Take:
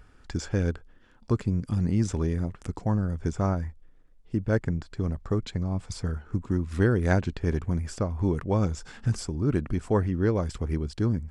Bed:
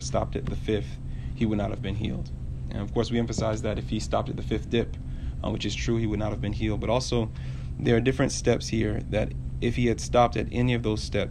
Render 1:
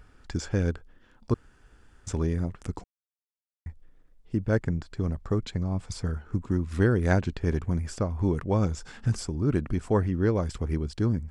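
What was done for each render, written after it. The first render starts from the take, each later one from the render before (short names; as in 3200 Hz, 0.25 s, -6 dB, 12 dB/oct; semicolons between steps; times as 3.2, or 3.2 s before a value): 1.34–2.07 room tone; 2.84–3.66 mute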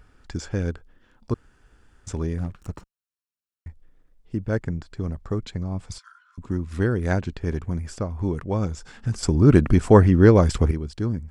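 2.38–3.68 minimum comb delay 0.72 ms; 5.98–6.38 rippled Chebyshev high-pass 990 Hz, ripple 9 dB; 9.23–10.71 gain +11 dB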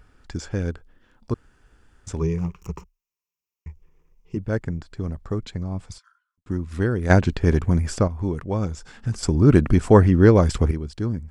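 2.2–4.37 ripple EQ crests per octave 0.77, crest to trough 13 dB; 5.82–6.46 fade out quadratic; 7.1–8.08 gain +8 dB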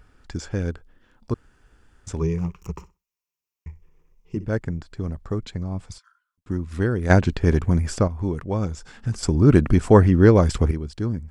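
2.72–4.53 flutter echo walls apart 10.8 m, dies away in 0.24 s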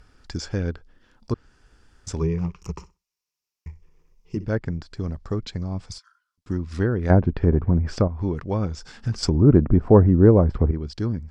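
treble ducked by the level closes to 830 Hz, closed at -14.5 dBFS; bell 5000 Hz +8 dB 0.68 oct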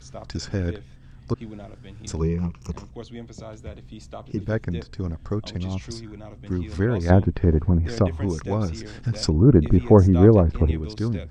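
add bed -12 dB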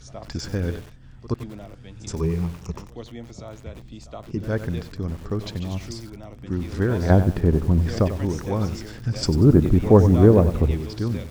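pre-echo 71 ms -17.5 dB; lo-fi delay 94 ms, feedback 35%, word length 6-bit, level -11 dB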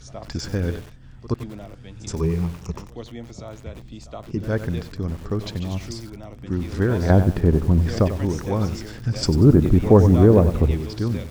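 gain +1.5 dB; limiter -3 dBFS, peak gain reduction 2.5 dB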